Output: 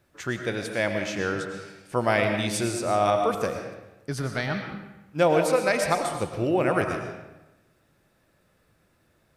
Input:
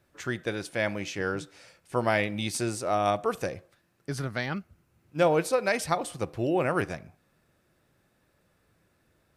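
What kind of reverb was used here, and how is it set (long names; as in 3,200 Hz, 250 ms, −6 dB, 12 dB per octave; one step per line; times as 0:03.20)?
comb and all-pass reverb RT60 1 s, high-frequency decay 0.8×, pre-delay 70 ms, DRR 4.5 dB
level +2 dB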